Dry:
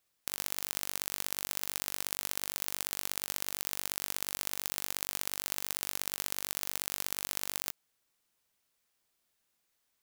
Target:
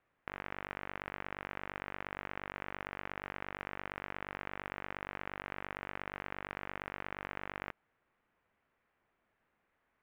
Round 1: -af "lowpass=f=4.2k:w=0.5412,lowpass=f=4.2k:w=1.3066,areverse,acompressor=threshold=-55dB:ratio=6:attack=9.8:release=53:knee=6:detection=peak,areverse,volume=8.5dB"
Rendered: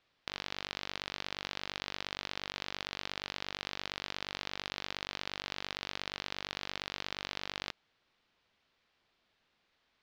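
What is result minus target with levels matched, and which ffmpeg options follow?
4000 Hz band +13.0 dB
-af "lowpass=f=2.1k:w=0.5412,lowpass=f=2.1k:w=1.3066,areverse,acompressor=threshold=-55dB:ratio=6:attack=9.8:release=53:knee=6:detection=peak,areverse,volume=8.5dB"

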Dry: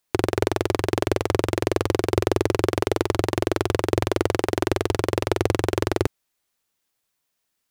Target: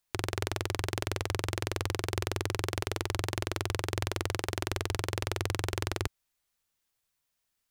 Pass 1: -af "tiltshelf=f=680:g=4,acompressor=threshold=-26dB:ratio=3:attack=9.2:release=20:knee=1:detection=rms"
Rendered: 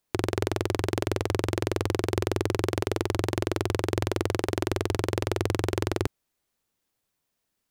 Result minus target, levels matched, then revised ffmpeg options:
250 Hz band +4.5 dB
-af "tiltshelf=f=680:g=4,acompressor=threshold=-26dB:ratio=3:attack=9.2:release=20:knee=1:detection=rms,equalizer=f=290:t=o:w=2.8:g=-10"

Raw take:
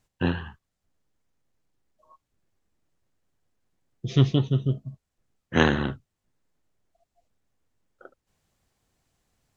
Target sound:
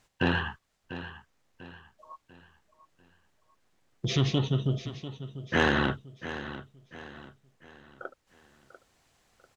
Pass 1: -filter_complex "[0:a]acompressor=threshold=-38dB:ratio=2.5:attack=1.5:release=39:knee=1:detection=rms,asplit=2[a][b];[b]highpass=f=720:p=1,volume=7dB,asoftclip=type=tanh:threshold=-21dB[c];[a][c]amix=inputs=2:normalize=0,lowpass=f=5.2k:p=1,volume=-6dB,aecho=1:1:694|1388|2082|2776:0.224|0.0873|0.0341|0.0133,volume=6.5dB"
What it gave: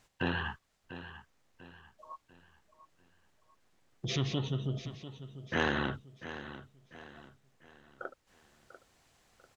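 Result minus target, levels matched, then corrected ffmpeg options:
compressor: peak gain reduction +7 dB
-filter_complex "[0:a]acompressor=threshold=-26dB:ratio=2.5:attack=1.5:release=39:knee=1:detection=rms,asplit=2[a][b];[b]highpass=f=720:p=1,volume=7dB,asoftclip=type=tanh:threshold=-21dB[c];[a][c]amix=inputs=2:normalize=0,lowpass=f=5.2k:p=1,volume=-6dB,aecho=1:1:694|1388|2082|2776:0.224|0.0873|0.0341|0.0133,volume=6.5dB"

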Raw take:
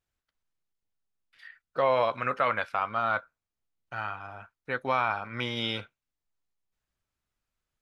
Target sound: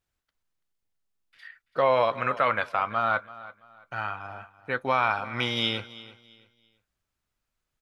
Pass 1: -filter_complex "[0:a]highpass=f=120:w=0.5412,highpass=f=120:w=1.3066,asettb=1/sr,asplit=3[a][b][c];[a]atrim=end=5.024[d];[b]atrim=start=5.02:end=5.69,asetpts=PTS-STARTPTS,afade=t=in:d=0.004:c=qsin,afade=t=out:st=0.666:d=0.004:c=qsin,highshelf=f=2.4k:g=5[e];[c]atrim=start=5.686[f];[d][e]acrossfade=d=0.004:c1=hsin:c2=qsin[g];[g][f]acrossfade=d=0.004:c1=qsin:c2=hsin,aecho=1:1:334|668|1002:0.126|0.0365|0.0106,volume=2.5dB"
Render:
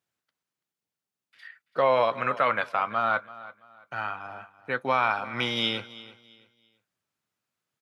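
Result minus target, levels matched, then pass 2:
125 Hz band -3.0 dB
-filter_complex "[0:a]asettb=1/sr,asplit=3[a][b][c];[a]atrim=end=5.024[d];[b]atrim=start=5.02:end=5.69,asetpts=PTS-STARTPTS,afade=t=in:d=0.004:c=qsin,afade=t=out:st=0.666:d=0.004:c=qsin,highshelf=f=2.4k:g=5[e];[c]atrim=start=5.686[f];[d][e]acrossfade=d=0.004:c1=hsin:c2=qsin[g];[g][f]acrossfade=d=0.004:c1=qsin:c2=hsin,aecho=1:1:334|668|1002:0.126|0.0365|0.0106,volume=2.5dB"

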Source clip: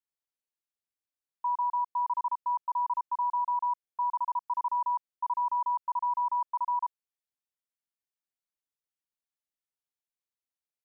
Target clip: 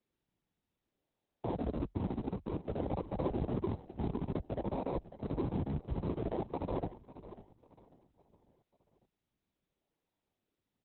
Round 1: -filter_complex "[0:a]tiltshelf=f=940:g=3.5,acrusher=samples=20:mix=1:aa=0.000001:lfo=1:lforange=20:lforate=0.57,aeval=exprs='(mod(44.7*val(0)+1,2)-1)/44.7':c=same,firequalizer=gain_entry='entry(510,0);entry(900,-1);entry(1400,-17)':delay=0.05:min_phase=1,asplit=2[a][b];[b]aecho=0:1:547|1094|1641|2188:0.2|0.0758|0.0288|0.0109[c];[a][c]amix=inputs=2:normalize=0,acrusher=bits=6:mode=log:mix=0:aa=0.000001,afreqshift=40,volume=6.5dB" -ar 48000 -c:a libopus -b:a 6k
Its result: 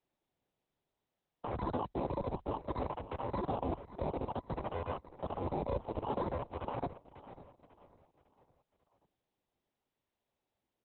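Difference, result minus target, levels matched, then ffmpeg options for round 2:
decimation with a swept rate: distortion -13 dB
-filter_complex "[0:a]tiltshelf=f=940:g=3.5,acrusher=samples=55:mix=1:aa=0.000001:lfo=1:lforange=55:lforate=0.57,aeval=exprs='(mod(44.7*val(0)+1,2)-1)/44.7':c=same,firequalizer=gain_entry='entry(510,0);entry(900,-1);entry(1400,-17)':delay=0.05:min_phase=1,asplit=2[a][b];[b]aecho=0:1:547|1094|1641|2188:0.2|0.0758|0.0288|0.0109[c];[a][c]amix=inputs=2:normalize=0,acrusher=bits=6:mode=log:mix=0:aa=0.000001,afreqshift=40,volume=6.5dB" -ar 48000 -c:a libopus -b:a 6k

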